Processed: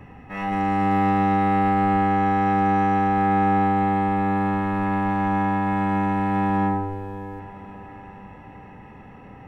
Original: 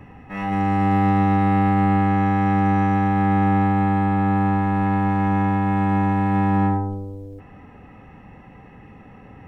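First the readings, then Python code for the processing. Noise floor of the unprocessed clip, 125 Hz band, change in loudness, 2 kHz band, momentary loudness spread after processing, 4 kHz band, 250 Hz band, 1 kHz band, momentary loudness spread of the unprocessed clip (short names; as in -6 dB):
-45 dBFS, -6.5 dB, -2.0 dB, 0.0 dB, 16 LU, n/a, -3.0 dB, +1.0 dB, 7 LU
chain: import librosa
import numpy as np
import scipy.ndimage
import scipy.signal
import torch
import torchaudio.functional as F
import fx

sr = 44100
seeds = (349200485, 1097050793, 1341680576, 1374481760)

y = fx.hum_notches(x, sr, base_hz=50, count=6)
y = fx.echo_diffused(y, sr, ms=619, feedback_pct=62, wet_db=-16.0)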